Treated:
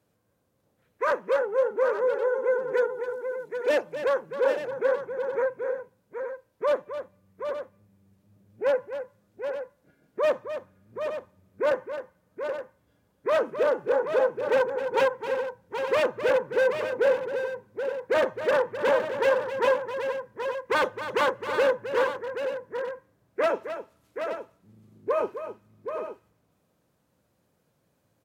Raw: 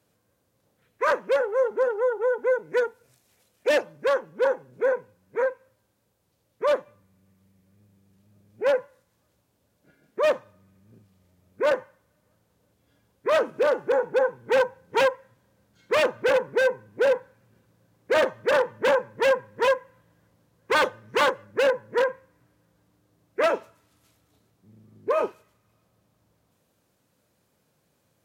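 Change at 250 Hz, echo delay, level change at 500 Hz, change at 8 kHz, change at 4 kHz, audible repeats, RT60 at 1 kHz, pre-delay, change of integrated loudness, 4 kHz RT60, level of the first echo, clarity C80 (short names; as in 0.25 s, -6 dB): -0.5 dB, 0.263 s, -0.5 dB, n/a, -4.5 dB, 3, none, none, -2.5 dB, none, -10.5 dB, none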